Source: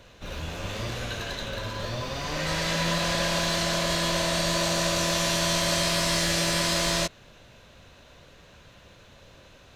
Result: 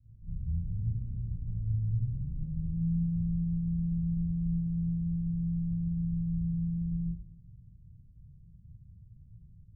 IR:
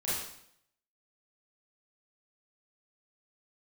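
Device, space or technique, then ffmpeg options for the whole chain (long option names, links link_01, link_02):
club heard from the street: -filter_complex "[0:a]alimiter=limit=-19dB:level=0:latency=1:release=48,lowpass=frequency=150:width=0.5412,lowpass=frequency=150:width=1.3066[link_01];[1:a]atrim=start_sample=2205[link_02];[link_01][link_02]afir=irnorm=-1:irlink=0,volume=-3dB"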